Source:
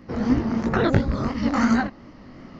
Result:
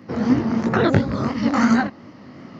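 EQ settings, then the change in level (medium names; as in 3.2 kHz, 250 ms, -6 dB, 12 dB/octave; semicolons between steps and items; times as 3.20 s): high-pass 93 Hz 24 dB/octave; +3.0 dB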